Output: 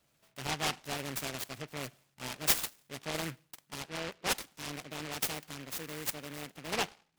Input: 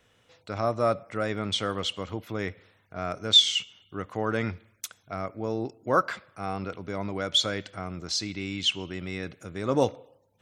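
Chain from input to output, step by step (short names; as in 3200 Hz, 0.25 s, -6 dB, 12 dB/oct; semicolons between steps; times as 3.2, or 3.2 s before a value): speed glide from 129% -> 161%; noise-modulated delay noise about 1800 Hz, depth 0.24 ms; gain -8.5 dB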